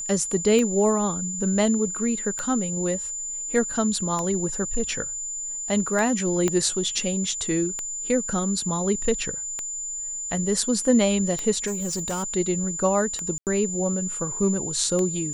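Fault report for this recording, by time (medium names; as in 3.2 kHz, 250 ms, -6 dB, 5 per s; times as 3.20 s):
tick 33 1/3 rpm -14 dBFS
whine 7.1 kHz -29 dBFS
6.48 s: pop -10 dBFS
11.66–12.24 s: clipped -24 dBFS
13.38–13.47 s: dropout 88 ms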